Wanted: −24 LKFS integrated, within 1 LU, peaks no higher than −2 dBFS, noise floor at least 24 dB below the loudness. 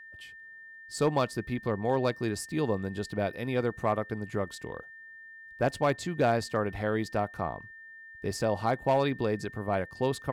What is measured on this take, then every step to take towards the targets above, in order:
share of clipped samples 0.2%; peaks flattened at −17.5 dBFS; interfering tone 1,800 Hz; level of the tone −46 dBFS; integrated loudness −30.5 LKFS; sample peak −17.5 dBFS; target loudness −24.0 LKFS
→ clipped peaks rebuilt −17.5 dBFS
notch filter 1,800 Hz, Q 30
level +6.5 dB

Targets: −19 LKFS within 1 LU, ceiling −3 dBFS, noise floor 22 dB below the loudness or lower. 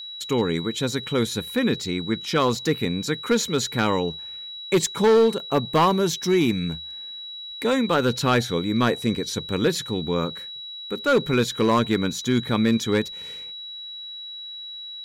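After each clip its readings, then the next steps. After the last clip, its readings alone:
share of clipped samples 0.8%; peaks flattened at −12.5 dBFS; interfering tone 3,900 Hz; level of the tone −34 dBFS; integrated loudness −23.0 LKFS; sample peak −12.5 dBFS; target loudness −19.0 LKFS
→ clipped peaks rebuilt −12.5 dBFS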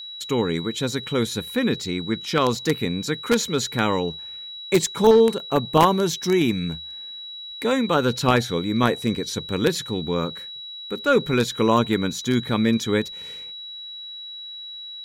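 share of clipped samples 0.0%; interfering tone 3,900 Hz; level of the tone −34 dBFS
→ notch filter 3,900 Hz, Q 30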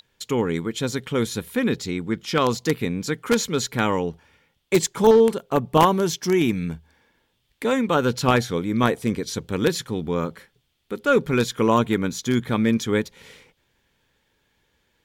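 interfering tone none found; integrated loudness −22.5 LKFS; sample peak −3.5 dBFS; target loudness −19.0 LKFS
→ level +3.5 dB
brickwall limiter −3 dBFS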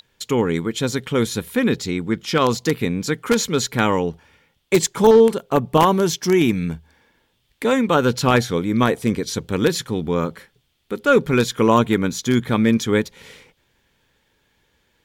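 integrated loudness −19.5 LKFS; sample peak −3.0 dBFS; background noise floor −66 dBFS

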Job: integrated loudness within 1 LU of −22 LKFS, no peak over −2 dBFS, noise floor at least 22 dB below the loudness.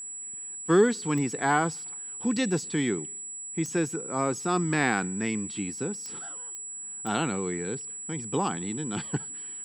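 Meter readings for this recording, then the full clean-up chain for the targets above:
number of clicks 5; interfering tone 7,800 Hz; level of the tone −36 dBFS; integrated loudness −29.0 LKFS; sample peak −9.5 dBFS; target loudness −22.0 LKFS
→ click removal
notch filter 7,800 Hz, Q 30
level +7 dB

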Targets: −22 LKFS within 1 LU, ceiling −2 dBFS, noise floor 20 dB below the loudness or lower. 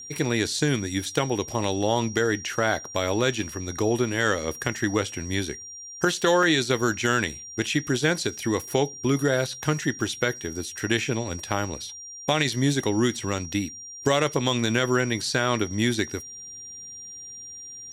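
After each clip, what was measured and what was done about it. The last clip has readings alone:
number of dropouts 2; longest dropout 1.5 ms; interfering tone 5,700 Hz; level of the tone −38 dBFS; integrated loudness −25.0 LKFS; sample peak −7.0 dBFS; target loudness −22.0 LKFS
→ repair the gap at 0:06.43/0:10.01, 1.5 ms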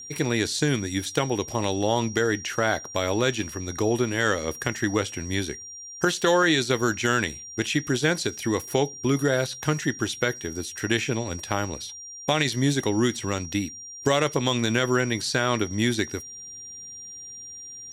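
number of dropouts 0; interfering tone 5,700 Hz; level of the tone −38 dBFS
→ notch filter 5,700 Hz, Q 30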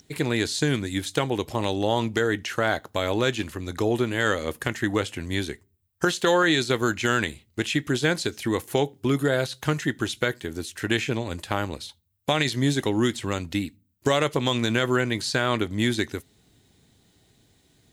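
interfering tone none found; integrated loudness −25.5 LKFS; sample peak −7.5 dBFS; target loudness −22.0 LKFS
→ level +3.5 dB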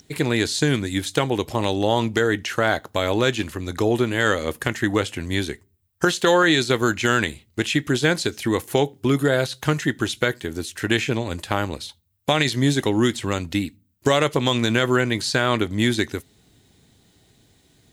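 integrated loudness −22.0 LKFS; sample peak −4.0 dBFS; background noise floor −62 dBFS

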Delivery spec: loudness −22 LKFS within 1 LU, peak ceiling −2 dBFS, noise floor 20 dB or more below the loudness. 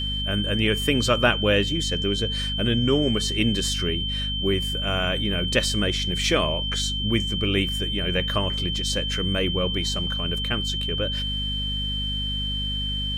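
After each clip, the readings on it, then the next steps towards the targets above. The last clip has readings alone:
mains hum 50 Hz; hum harmonics up to 250 Hz; level of the hum −27 dBFS; interfering tone 3,100 Hz; level of the tone −27 dBFS; integrated loudness −23.5 LKFS; sample peak −5.5 dBFS; target loudness −22.0 LKFS
→ mains-hum notches 50/100/150/200/250 Hz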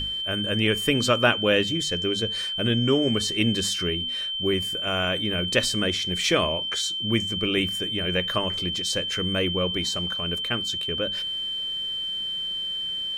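mains hum none found; interfering tone 3,100 Hz; level of the tone −27 dBFS
→ notch filter 3,100 Hz, Q 30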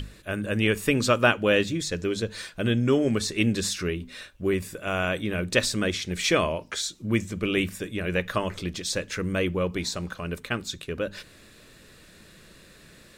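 interfering tone none found; integrated loudness −26.5 LKFS; sample peak −5.5 dBFS; target loudness −22.0 LKFS
→ level +4.5 dB
brickwall limiter −2 dBFS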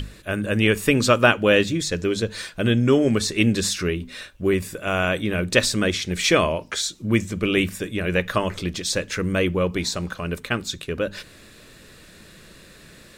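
integrated loudness −22.0 LKFS; sample peak −2.0 dBFS; background noise floor −48 dBFS

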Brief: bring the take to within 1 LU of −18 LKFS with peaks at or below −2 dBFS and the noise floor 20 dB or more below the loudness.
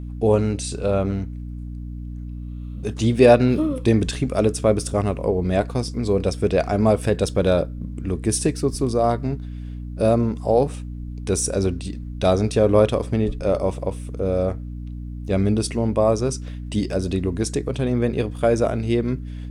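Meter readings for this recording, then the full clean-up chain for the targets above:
mains hum 60 Hz; hum harmonics up to 300 Hz; level of the hum −29 dBFS; integrated loudness −21.5 LKFS; sample peak −2.5 dBFS; target loudness −18.0 LKFS
→ hum removal 60 Hz, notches 5
level +3.5 dB
brickwall limiter −2 dBFS

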